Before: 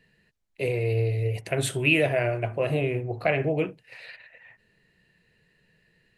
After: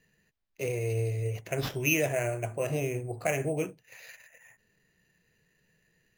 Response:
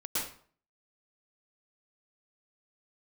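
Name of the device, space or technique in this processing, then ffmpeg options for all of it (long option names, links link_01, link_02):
crushed at another speed: -af "asetrate=22050,aresample=44100,acrusher=samples=10:mix=1:aa=0.000001,asetrate=88200,aresample=44100,volume=-5dB"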